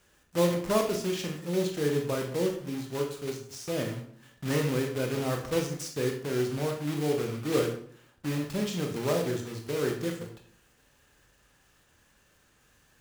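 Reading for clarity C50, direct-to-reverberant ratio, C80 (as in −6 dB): 6.5 dB, 2.0 dB, 11.0 dB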